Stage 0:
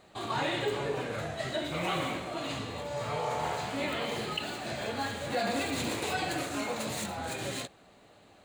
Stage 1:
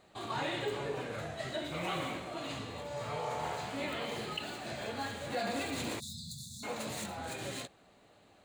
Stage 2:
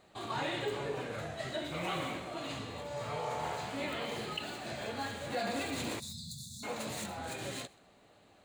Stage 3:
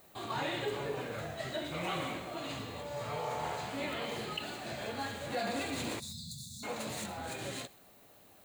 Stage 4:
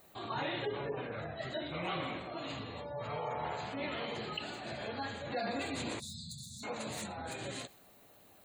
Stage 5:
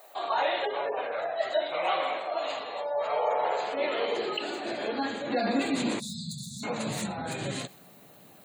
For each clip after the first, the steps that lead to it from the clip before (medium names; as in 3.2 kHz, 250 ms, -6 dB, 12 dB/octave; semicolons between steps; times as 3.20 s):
spectral selection erased 6.00–6.63 s, 240–3400 Hz; trim -4.5 dB
thinning echo 128 ms, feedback 24%, high-pass 570 Hz, level -23.5 dB
added noise violet -63 dBFS
spectral gate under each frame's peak -25 dB strong; trim -1 dB
high-pass sweep 640 Hz -> 150 Hz, 2.94–6.78 s; trim +6.5 dB